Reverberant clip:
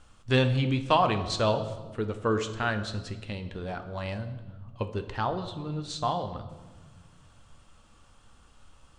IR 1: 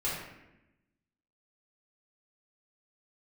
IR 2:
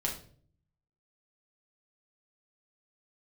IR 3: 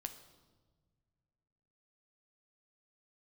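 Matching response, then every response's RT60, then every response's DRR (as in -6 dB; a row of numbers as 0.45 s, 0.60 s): 3; 0.90 s, 0.50 s, no single decay rate; -8.5 dB, -2.0 dB, 7.0 dB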